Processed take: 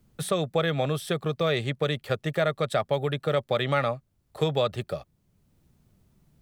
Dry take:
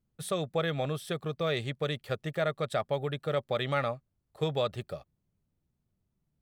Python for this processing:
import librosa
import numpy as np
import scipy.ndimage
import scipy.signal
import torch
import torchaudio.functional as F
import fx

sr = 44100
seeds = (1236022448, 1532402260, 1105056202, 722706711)

y = fx.band_squash(x, sr, depth_pct=40)
y = y * librosa.db_to_amplitude(5.0)